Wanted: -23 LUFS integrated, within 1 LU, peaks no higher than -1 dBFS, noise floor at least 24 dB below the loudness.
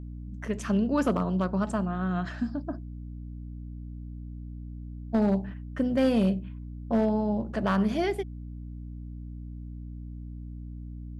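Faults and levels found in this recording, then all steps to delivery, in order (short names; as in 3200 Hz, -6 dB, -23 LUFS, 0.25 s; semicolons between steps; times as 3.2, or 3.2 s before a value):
clipped 0.3%; flat tops at -16.5 dBFS; hum 60 Hz; harmonics up to 300 Hz; hum level -37 dBFS; loudness -28.0 LUFS; peak -16.5 dBFS; loudness target -23.0 LUFS
-> clip repair -16.5 dBFS; notches 60/120/180/240/300 Hz; gain +5 dB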